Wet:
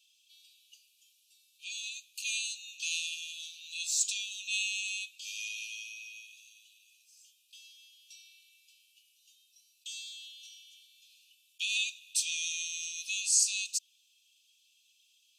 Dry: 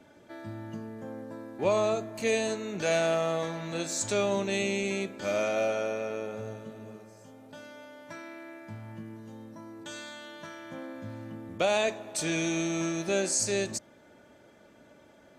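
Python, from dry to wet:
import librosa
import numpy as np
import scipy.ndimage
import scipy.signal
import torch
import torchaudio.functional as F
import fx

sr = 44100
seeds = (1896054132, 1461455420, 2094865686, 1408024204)

y = scipy.signal.sosfilt(scipy.signal.cheby1(10, 1.0, 2500.0, 'highpass', fs=sr, output='sos'), x)
y = F.gain(torch.from_numpy(y), 4.0).numpy()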